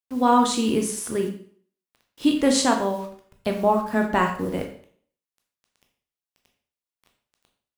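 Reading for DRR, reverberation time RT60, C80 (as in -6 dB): 2.5 dB, 0.55 s, 11.0 dB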